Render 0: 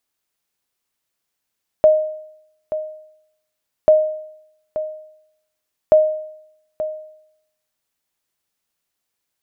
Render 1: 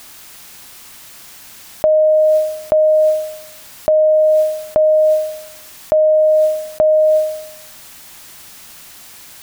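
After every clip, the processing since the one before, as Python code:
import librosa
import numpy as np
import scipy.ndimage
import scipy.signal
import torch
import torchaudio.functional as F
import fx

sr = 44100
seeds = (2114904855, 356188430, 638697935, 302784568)

y = fx.peak_eq(x, sr, hz=460.0, db=-5.0, octaves=0.83)
y = fx.env_flatten(y, sr, amount_pct=100)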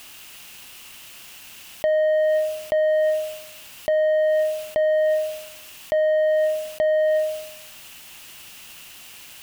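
y = fx.leveller(x, sr, passes=1)
y = fx.peak_eq(y, sr, hz=2800.0, db=11.0, octaves=0.41)
y = 10.0 ** (-6.5 / 20.0) * np.tanh(y / 10.0 ** (-6.5 / 20.0))
y = F.gain(torch.from_numpy(y), -8.0).numpy()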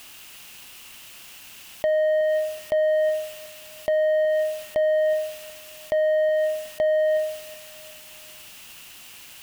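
y = fx.echo_feedback(x, sr, ms=370, feedback_pct=41, wet_db=-18.0)
y = F.gain(torch.from_numpy(y), -1.5).numpy()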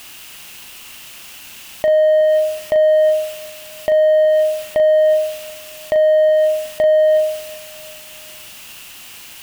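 y = fx.doubler(x, sr, ms=39.0, db=-8)
y = F.gain(torch.from_numpy(y), 6.5).numpy()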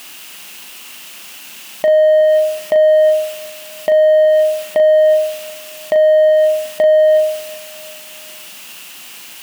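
y = fx.brickwall_highpass(x, sr, low_hz=150.0)
y = F.gain(torch.from_numpy(y), 2.5).numpy()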